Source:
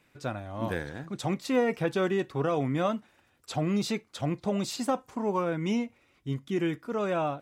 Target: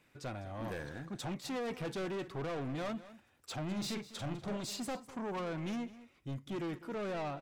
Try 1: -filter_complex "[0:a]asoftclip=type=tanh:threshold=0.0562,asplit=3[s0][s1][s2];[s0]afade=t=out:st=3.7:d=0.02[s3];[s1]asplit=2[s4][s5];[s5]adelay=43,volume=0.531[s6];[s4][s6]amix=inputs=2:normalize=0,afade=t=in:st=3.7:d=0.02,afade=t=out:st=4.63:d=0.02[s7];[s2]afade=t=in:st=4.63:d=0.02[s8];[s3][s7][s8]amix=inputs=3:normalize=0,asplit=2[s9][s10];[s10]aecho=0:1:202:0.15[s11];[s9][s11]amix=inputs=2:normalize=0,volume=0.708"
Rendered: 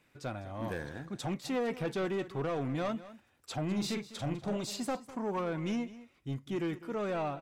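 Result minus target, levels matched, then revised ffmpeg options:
saturation: distortion -6 dB
-filter_complex "[0:a]asoftclip=type=tanh:threshold=0.0237,asplit=3[s0][s1][s2];[s0]afade=t=out:st=3.7:d=0.02[s3];[s1]asplit=2[s4][s5];[s5]adelay=43,volume=0.531[s6];[s4][s6]amix=inputs=2:normalize=0,afade=t=in:st=3.7:d=0.02,afade=t=out:st=4.63:d=0.02[s7];[s2]afade=t=in:st=4.63:d=0.02[s8];[s3][s7][s8]amix=inputs=3:normalize=0,asplit=2[s9][s10];[s10]aecho=0:1:202:0.15[s11];[s9][s11]amix=inputs=2:normalize=0,volume=0.708"

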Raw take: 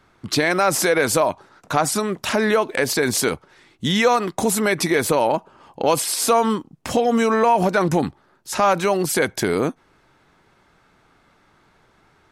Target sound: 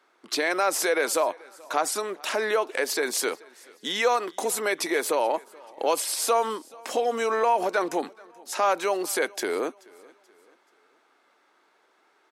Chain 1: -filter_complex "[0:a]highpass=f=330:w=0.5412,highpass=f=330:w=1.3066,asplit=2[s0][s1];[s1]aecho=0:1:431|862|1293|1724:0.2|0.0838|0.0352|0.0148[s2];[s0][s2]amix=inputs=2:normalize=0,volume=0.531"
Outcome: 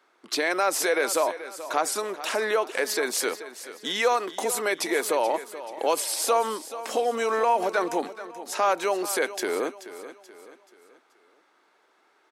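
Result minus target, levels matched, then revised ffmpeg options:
echo-to-direct +10.5 dB
-filter_complex "[0:a]highpass=f=330:w=0.5412,highpass=f=330:w=1.3066,asplit=2[s0][s1];[s1]aecho=0:1:431|862|1293:0.0596|0.025|0.0105[s2];[s0][s2]amix=inputs=2:normalize=0,volume=0.531"

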